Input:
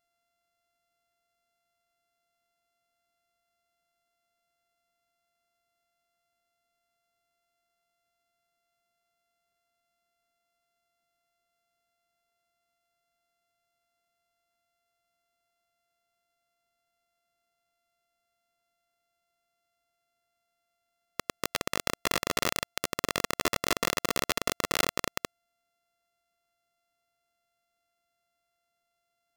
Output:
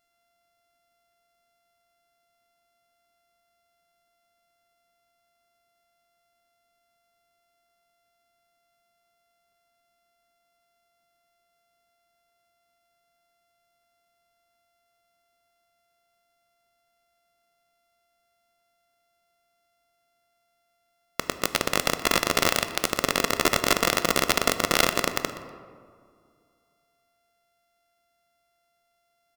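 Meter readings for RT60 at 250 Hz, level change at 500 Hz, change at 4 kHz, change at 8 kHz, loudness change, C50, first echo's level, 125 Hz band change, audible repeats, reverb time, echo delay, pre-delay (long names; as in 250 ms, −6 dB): 2.4 s, +6.5 dB, +6.5 dB, +6.0 dB, +6.5 dB, 10.5 dB, −17.0 dB, +6.0 dB, 1, 2.2 s, 122 ms, 3 ms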